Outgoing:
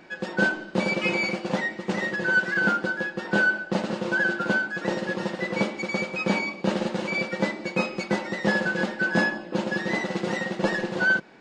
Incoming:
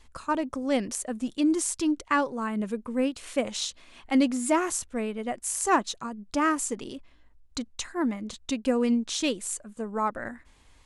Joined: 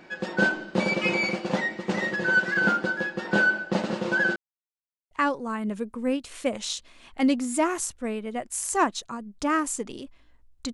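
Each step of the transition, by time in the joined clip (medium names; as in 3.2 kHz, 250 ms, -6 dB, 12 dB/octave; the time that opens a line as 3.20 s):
outgoing
4.36–5.11 s: mute
5.11 s: go over to incoming from 2.03 s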